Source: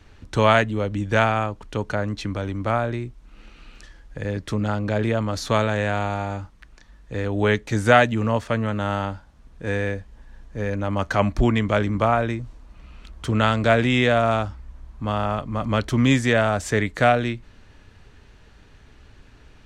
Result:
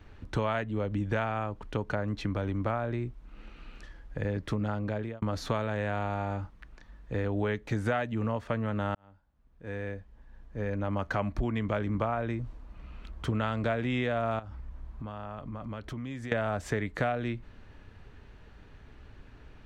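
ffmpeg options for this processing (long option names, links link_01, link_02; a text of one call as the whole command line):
ffmpeg -i in.wav -filter_complex "[0:a]asettb=1/sr,asplit=3[link_01][link_02][link_03];[link_01]atrim=end=14.394[link_04];[link_02]atrim=start=14.39:end=16.32,asetpts=PTS-STARTPTS,afade=type=in:duration=0.004:curve=qsin,afade=type=out:start_time=1.926:duration=0.004:curve=qsin,acompressor=threshold=-34dB:ratio=6:attack=3.2:release=140:knee=1:detection=peak[link_05];[link_03]atrim=start=16.316[link_06];[link_04][link_05]acrossfade=duration=0.004:curve1=hsin:curve2=qsin[link_07];[link_07][link_06]acrossfade=duration=0.004:curve1=qsin:curve2=hsin,asplit=3[link_08][link_09][link_10];[link_08]atrim=end=5.22,asetpts=PTS-STARTPTS,afade=type=out:start_time=4.64:duration=0.58[link_11];[link_09]atrim=start=5.22:end=8.95,asetpts=PTS-STARTPTS,afade=type=in:duration=0.004:curve=hsin,afade=type=out:start_time=3.726:duration=0.004:curve=hsin[link_12];[link_10]atrim=start=8.95,asetpts=PTS-STARTPTS,afade=type=in:duration=2.72[link_13];[link_11][link_12][link_13]concat=n=3:v=0:a=1,equalizer=frequency=7900:width=0.47:gain=-10.5,acompressor=threshold=-25dB:ratio=6,volume=-1.5dB" out.wav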